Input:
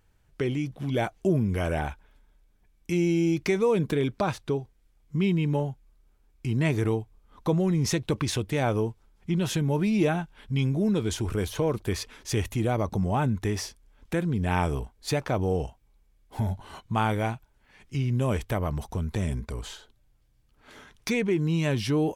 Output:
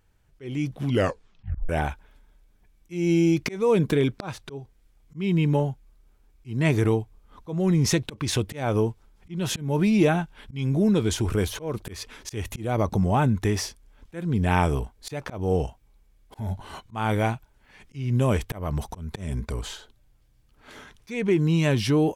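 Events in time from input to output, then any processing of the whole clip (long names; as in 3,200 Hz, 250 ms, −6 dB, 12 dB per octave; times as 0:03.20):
0:00.89: tape stop 0.80 s
whole clip: volume swells 238 ms; automatic gain control gain up to 4 dB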